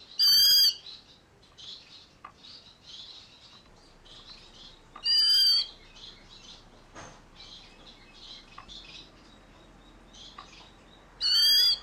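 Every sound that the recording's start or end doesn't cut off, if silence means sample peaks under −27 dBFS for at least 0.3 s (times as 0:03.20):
0:05.06–0:05.62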